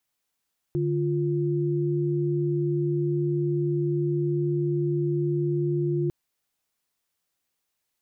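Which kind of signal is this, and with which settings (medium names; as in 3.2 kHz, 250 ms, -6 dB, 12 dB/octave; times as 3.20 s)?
chord D3/F4 sine, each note -25 dBFS 5.35 s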